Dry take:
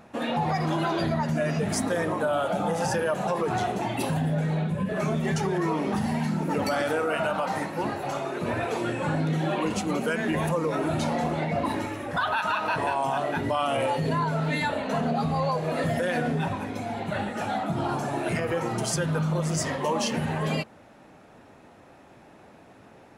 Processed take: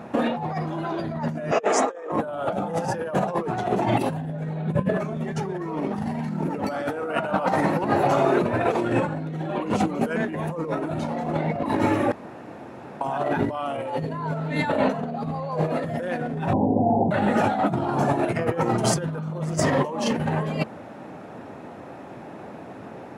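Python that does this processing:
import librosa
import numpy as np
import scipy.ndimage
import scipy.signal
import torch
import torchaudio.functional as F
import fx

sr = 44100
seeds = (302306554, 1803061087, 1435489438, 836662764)

y = fx.cabinet(x, sr, low_hz=360.0, low_slope=24, high_hz=7700.0, hz=(470.0, 800.0, 1200.0, 2600.0, 4400.0, 6900.0), db=(9, 4, 8, 4, -6, 8), at=(1.51, 2.12))
y = fx.steep_lowpass(y, sr, hz=890.0, slope=72, at=(16.53, 17.11))
y = fx.edit(y, sr, fx.room_tone_fill(start_s=12.12, length_s=0.89), tone=tone)
y = scipy.signal.sosfilt(scipy.signal.butter(2, 110.0, 'highpass', fs=sr, output='sos'), y)
y = fx.high_shelf(y, sr, hz=2000.0, db=-11.0)
y = fx.over_compress(y, sr, threshold_db=-32.0, ratio=-0.5)
y = y * 10.0 ** (8.5 / 20.0)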